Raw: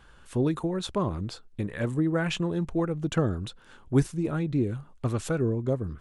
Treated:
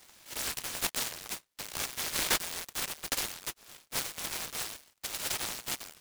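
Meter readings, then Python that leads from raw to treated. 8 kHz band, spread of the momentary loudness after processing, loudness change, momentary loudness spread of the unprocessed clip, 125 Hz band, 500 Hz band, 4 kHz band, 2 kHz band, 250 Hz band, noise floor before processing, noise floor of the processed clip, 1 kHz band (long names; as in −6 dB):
+12.0 dB, 10 LU, −5.0 dB, 8 LU, −25.0 dB, −16.5 dB, +6.0 dB, +1.0 dB, −22.5 dB, −54 dBFS, −71 dBFS, −4.0 dB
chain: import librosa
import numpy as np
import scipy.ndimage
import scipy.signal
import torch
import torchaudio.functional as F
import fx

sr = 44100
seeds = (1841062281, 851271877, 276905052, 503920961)

p1 = np.r_[np.sort(x[:len(x) // 8 * 8].reshape(-1, 8), axis=1).ravel(), x[len(x) // 8 * 8:]]
p2 = fx.schmitt(p1, sr, flips_db=-30.0)
p3 = p1 + (p2 * 10.0 ** (-9.0 / 20.0))
p4 = scipy.signal.sosfilt(scipy.signal.cheby1(6, 1.0, 2200.0, 'highpass', fs=sr, output='sos'), p3)
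p5 = 10.0 ** (-25.0 / 20.0) * (np.abs((p4 / 10.0 ** (-25.0 / 20.0) + 3.0) % 4.0 - 2.0) - 1.0)
p6 = fx.noise_mod_delay(p5, sr, seeds[0], noise_hz=1400.0, depth_ms=0.11)
y = p6 * 10.0 ** (7.0 / 20.0)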